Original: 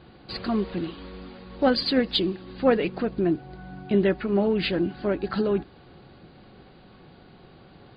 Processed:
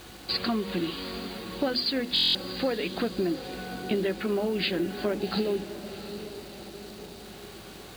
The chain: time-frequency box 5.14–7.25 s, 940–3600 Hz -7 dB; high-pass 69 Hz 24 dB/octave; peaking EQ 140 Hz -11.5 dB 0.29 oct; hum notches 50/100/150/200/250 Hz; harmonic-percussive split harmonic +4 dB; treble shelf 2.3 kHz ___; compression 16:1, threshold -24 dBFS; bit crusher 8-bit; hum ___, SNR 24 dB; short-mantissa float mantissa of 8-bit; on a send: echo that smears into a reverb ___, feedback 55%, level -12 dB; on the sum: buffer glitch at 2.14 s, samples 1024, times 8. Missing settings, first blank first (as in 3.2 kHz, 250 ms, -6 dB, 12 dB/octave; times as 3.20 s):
+11.5 dB, 50 Hz, 753 ms